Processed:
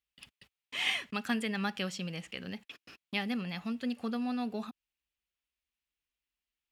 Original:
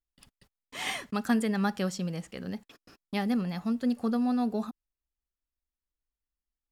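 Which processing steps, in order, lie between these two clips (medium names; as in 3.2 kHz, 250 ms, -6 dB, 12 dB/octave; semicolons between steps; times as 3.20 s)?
high-pass 56 Hz; peaking EQ 2.7 kHz +14 dB 1.2 oct; in parallel at 0 dB: compression, threshold -40 dBFS, peak gain reduction 19.5 dB; on the sum: trim -8.5 dB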